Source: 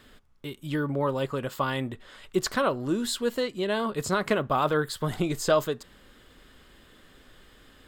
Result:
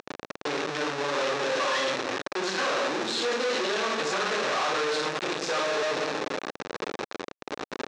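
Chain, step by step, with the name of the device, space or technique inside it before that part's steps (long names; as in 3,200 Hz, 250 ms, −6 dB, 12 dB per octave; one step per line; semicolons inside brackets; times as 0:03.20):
low-pass that shuts in the quiet parts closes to 310 Hz, open at −25.5 dBFS
0:01.44–0:02.41: EQ curve with evenly spaced ripples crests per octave 1.2, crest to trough 12 dB
rectangular room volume 240 cubic metres, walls mixed, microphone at 5.2 metres
home computer beeper (sign of each sample alone; loudspeaker in its box 560–5,300 Hz, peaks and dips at 680 Hz −7 dB, 960 Hz −6 dB, 1,400 Hz −4 dB, 2,100 Hz −6 dB, 3,100 Hz −7 dB, 4,700 Hz −6 dB)
level −5.5 dB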